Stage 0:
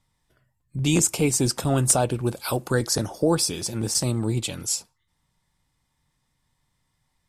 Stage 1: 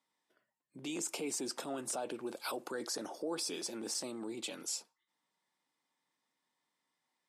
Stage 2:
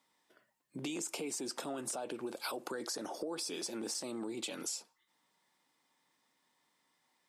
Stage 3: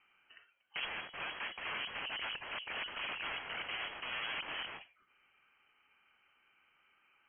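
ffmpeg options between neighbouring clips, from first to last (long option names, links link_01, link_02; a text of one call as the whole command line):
ffmpeg -i in.wav -af "highshelf=frequency=8400:gain=-9.5,alimiter=limit=-21dB:level=0:latency=1:release=19,highpass=frequency=260:width=0.5412,highpass=frequency=260:width=1.3066,volume=-7dB" out.wav
ffmpeg -i in.wav -af "acompressor=threshold=-45dB:ratio=6,volume=8dB" out.wav
ffmpeg -i in.wav -af "aeval=exprs='(mod(106*val(0)+1,2)-1)/106':channel_layout=same,equalizer=frequency=96:width=0.86:gain=-6.5,lowpass=frequency=2800:width_type=q:width=0.5098,lowpass=frequency=2800:width_type=q:width=0.6013,lowpass=frequency=2800:width_type=q:width=0.9,lowpass=frequency=2800:width_type=q:width=2.563,afreqshift=-3300,volume=8dB" out.wav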